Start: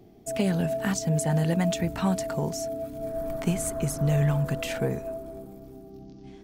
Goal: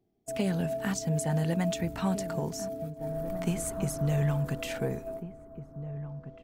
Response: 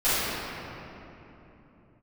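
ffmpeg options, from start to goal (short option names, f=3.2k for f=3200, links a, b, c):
-filter_complex "[0:a]agate=range=-18dB:threshold=-35dB:ratio=16:detection=peak,asplit=2[a][b];[b]adelay=1749,volume=-11dB,highshelf=f=4k:g=-39.4[c];[a][c]amix=inputs=2:normalize=0,volume=-4dB"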